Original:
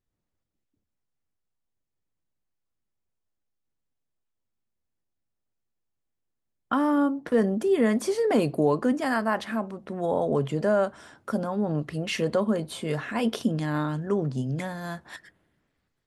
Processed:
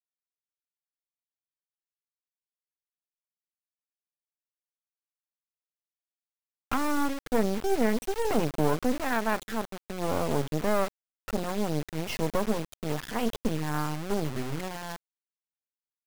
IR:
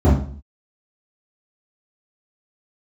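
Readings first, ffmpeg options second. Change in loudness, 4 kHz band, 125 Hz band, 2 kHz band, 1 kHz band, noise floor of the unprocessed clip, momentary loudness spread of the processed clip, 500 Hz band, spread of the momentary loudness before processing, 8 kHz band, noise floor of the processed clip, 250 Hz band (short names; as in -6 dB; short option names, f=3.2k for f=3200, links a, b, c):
-4.0 dB, -1.0 dB, -3.5 dB, -2.0 dB, -1.0 dB, -81 dBFS, 8 LU, -4.5 dB, 9 LU, +2.5 dB, under -85 dBFS, -4.5 dB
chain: -af "afftfilt=real='re*gte(hypot(re,im),0.0398)':imag='im*gte(hypot(re,im),0.0398)':win_size=1024:overlap=0.75,acrusher=bits=3:dc=4:mix=0:aa=0.000001"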